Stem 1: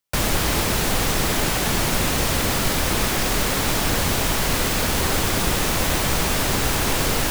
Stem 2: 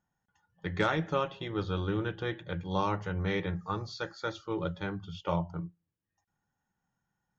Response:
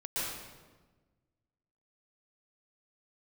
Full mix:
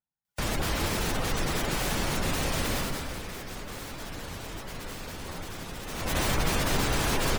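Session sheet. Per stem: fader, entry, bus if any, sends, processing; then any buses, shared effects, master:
2.72 s -8.5 dB -> 3.21 s -18.5 dB -> 5.83 s -18.5 dB -> 6.17 s -6 dB, 0.25 s, send -13 dB, spectral gate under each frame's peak -25 dB strong
-18.0 dB, 0.00 s, no send, dry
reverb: on, RT60 1.3 s, pre-delay 0.11 s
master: dry

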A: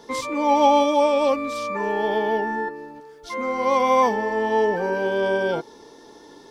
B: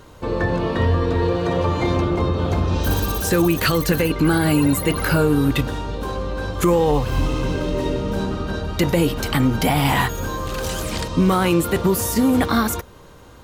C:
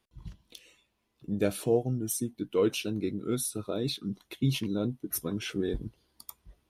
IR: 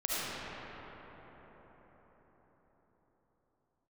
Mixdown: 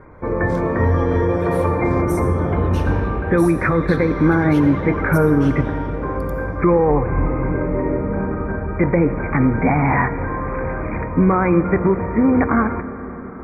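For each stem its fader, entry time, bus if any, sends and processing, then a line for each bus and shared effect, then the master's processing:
-18.0 dB, 0.35 s, no send, dry
+1.5 dB, 0.00 s, send -20 dB, Chebyshev low-pass 2400 Hz, order 10
-8.5 dB, 0.00 s, send -9.5 dB, dry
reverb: on, RT60 5.3 s, pre-delay 30 ms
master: dry

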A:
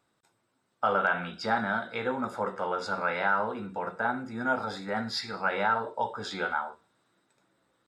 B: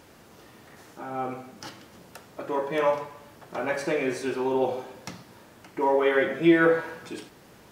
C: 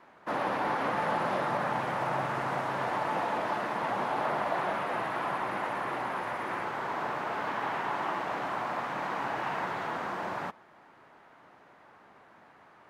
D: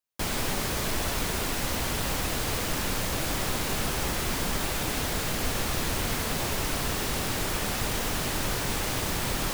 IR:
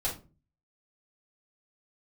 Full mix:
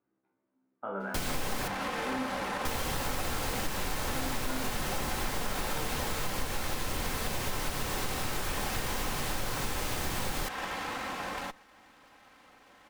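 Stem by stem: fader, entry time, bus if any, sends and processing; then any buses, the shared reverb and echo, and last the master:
-2.5 dB, 0.00 s, no send, LPF 2500 Hz 24 dB/oct; bell 310 Hz +14.5 dB 1.2 oct; resonator 65 Hz, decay 0.66 s, harmonics all, mix 90%
off
-0.5 dB, 1.00 s, no send, minimum comb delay 3.8 ms; high shelf 4300 Hz +11.5 dB
+0.5 dB, 0.95 s, muted 1.68–2.65, send -14.5 dB, dry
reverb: on, RT60 0.35 s, pre-delay 4 ms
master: compressor 3:1, threshold -31 dBFS, peak gain reduction 11 dB

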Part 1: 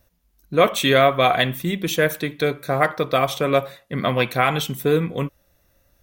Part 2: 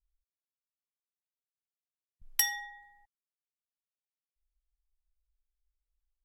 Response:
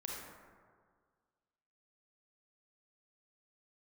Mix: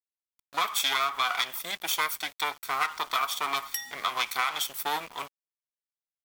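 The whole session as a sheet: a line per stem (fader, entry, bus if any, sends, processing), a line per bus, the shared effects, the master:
+2.0 dB, 0.00 s, no send, minimum comb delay 0.88 ms; bell 2300 Hz -4.5 dB 1.1 oct
-5.5 dB, 1.35 s, no send, upward compressor, threshold -33 dBFS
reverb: off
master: HPF 1100 Hz 12 dB/oct; sample gate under -44 dBFS; compressor, threshold -23 dBFS, peak gain reduction 7.5 dB

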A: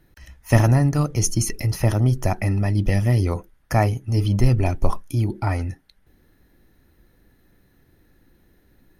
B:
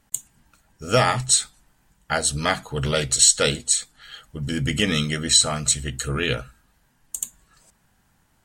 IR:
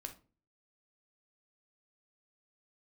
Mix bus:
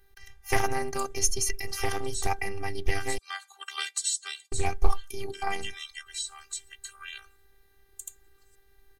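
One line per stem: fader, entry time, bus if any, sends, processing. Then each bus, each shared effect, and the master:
+1.5 dB, 0.00 s, muted 3.18–4.52, no send, dry
+2.0 dB, 0.85 s, no send, HPF 840 Hz 24 dB/oct; harmonic-percussive split harmonic -15 dB; compressor 2:1, threshold -28 dBFS, peak gain reduction 9 dB; auto duck -9 dB, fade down 0.70 s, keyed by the first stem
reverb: off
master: bell 190 Hz -11 dB 2.5 oct; robotiser 394 Hz; Doppler distortion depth 0.3 ms

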